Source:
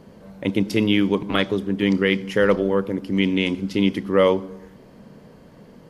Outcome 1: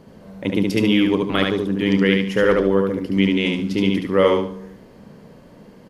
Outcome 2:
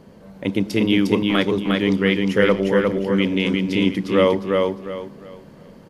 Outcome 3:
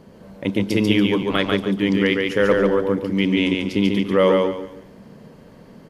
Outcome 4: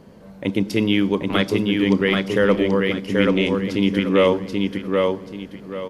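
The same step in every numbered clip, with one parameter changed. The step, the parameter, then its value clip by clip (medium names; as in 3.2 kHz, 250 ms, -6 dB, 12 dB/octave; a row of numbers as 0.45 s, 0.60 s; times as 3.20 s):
feedback delay, time: 72 ms, 355 ms, 142 ms, 783 ms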